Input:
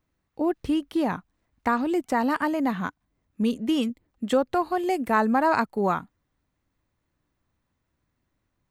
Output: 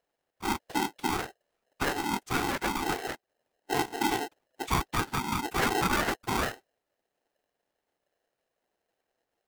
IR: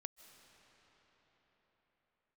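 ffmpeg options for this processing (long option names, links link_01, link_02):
-af "asetrate=40517,aresample=44100,afftfilt=real='hypot(re,im)*cos(2*PI*random(0))':imag='hypot(re,im)*sin(2*PI*random(1))':win_size=512:overlap=0.75,acrusher=bits=8:mode=log:mix=0:aa=0.000001,aeval=exprs='val(0)*sgn(sin(2*PI*580*n/s))':channel_layout=same"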